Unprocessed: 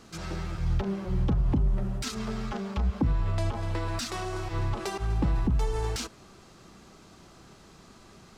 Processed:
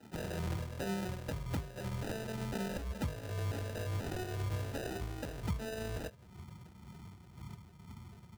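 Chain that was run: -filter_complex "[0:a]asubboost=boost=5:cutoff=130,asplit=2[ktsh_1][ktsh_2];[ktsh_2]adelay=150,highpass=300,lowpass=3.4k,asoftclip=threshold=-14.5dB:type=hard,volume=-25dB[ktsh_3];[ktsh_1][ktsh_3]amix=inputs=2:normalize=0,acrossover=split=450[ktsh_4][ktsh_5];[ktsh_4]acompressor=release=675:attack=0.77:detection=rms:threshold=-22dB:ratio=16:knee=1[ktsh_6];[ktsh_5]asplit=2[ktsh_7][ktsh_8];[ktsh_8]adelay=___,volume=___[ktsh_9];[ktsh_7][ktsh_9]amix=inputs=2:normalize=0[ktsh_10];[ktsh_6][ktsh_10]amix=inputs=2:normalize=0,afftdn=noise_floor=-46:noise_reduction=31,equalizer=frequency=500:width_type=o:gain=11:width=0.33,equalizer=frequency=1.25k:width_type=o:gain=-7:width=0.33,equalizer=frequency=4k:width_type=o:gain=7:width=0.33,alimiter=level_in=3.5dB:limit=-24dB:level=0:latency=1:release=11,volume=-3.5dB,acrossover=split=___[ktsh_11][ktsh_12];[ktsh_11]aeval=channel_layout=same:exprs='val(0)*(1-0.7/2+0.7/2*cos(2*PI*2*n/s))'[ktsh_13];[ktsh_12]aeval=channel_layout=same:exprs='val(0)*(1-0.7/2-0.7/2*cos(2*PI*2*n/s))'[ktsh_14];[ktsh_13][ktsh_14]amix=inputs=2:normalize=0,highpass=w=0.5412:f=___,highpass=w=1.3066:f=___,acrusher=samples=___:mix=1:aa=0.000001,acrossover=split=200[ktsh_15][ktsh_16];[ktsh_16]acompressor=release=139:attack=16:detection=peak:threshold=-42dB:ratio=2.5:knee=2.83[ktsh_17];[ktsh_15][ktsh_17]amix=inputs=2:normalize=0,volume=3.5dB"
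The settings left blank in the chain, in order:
23, -7dB, 440, 76, 76, 40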